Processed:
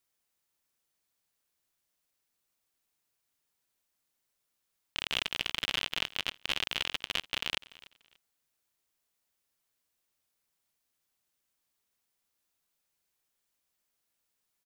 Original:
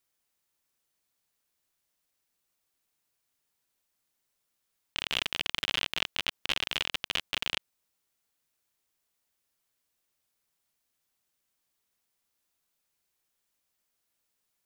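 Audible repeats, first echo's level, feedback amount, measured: 2, -20.5 dB, 23%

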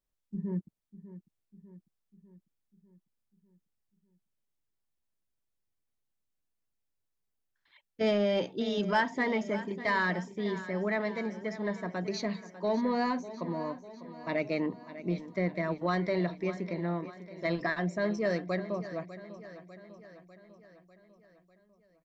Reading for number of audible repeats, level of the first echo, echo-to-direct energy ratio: 5, -14.5 dB, -13.0 dB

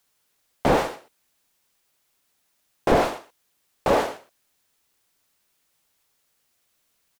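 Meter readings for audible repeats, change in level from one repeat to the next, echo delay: 1, no steady repeat, 0.122 s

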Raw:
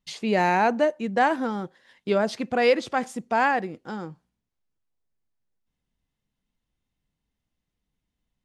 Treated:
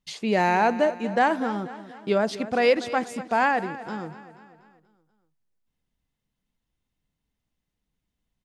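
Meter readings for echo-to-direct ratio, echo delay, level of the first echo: -13.5 dB, 0.241 s, -15.0 dB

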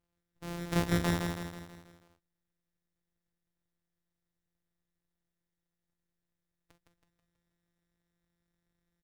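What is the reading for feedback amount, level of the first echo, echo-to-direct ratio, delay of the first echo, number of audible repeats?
50%, -4.5 dB, -3.0 dB, 0.162 s, 6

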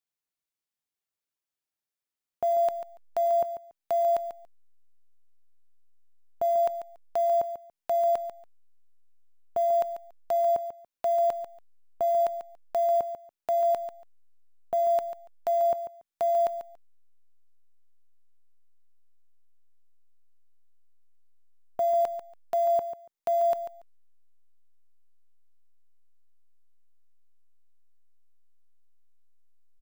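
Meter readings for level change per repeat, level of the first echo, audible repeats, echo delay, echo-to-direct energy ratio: -15.0 dB, -11.0 dB, 2, 0.142 s, -11.0 dB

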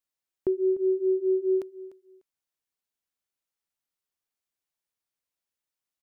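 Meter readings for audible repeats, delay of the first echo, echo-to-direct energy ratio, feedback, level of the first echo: 2, 0.298 s, -17.0 dB, 19%, -17.0 dB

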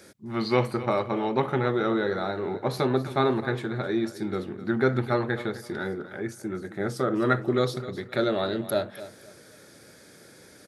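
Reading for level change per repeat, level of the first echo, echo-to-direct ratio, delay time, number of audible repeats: -11.5 dB, -15.0 dB, -14.5 dB, 0.259 s, 2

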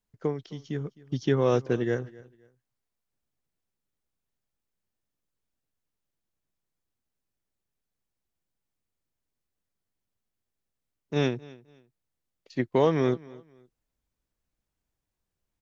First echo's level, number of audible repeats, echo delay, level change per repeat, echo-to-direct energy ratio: -21.5 dB, 2, 0.26 s, -11.5 dB, -21.0 dB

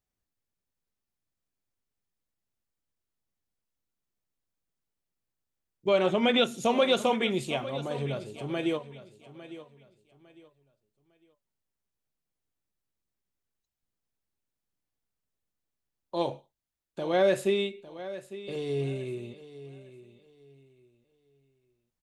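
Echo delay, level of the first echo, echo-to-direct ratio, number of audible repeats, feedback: 0.854 s, -15.0 dB, -14.5 dB, 2, 28%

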